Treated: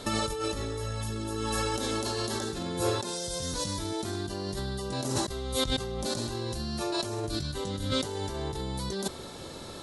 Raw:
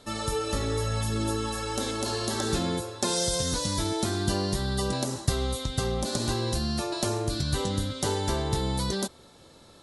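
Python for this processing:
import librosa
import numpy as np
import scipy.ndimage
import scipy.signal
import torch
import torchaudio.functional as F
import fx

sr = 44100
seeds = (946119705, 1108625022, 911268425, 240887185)

y = fx.peak_eq(x, sr, hz=380.0, db=3.5, octaves=0.22)
y = fx.over_compress(y, sr, threshold_db=-36.0, ratio=-1.0)
y = F.gain(torch.from_numpy(y), 3.5).numpy()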